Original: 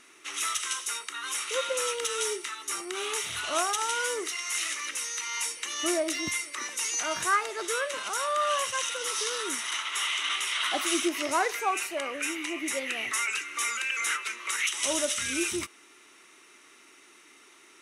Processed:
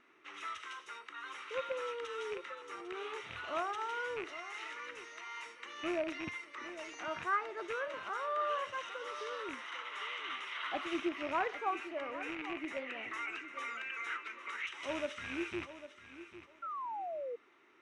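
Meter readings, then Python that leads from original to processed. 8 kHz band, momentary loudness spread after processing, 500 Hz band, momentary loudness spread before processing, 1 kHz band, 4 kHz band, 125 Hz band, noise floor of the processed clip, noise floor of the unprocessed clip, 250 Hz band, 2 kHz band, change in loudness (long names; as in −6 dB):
−29.5 dB, 10 LU, −6.5 dB, 5 LU, −7.0 dB, −16.0 dB, −5.0 dB, −61 dBFS, −56 dBFS, −7.0 dB, −9.5 dB, −11.0 dB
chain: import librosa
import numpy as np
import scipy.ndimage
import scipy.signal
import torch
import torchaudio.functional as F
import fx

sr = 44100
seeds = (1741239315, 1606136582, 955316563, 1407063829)

p1 = fx.rattle_buzz(x, sr, strikes_db=-45.0, level_db=-19.0)
p2 = p1 + fx.echo_feedback(p1, sr, ms=801, feedback_pct=21, wet_db=-13, dry=0)
p3 = fx.spec_paint(p2, sr, seeds[0], shape='fall', start_s=16.62, length_s=0.74, low_hz=460.0, high_hz=1400.0, level_db=-33.0)
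p4 = scipy.signal.sosfilt(scipy.signal.butter(2, 2000.0, 'lowpass', fs=sr, output='sos'), p3)
y = p4 * librosa.db_to_amplitude(-7.0)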